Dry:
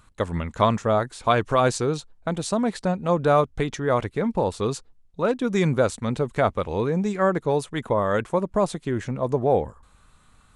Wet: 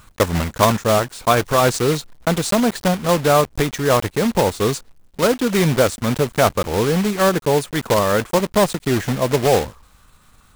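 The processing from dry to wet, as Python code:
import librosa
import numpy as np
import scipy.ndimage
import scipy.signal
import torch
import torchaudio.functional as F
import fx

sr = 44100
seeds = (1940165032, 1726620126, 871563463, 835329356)

p1 = fx.block_float(x, sr, bits=3)
p2 = fx.rider(p1, sr, range_db=10, speed_s=0.5)
p3 = p1 + F.gain(torch.from_numpy(p2), 3.0).numpy()
y = F.gain(torch.from_numpy(p3), -2.5).numpy()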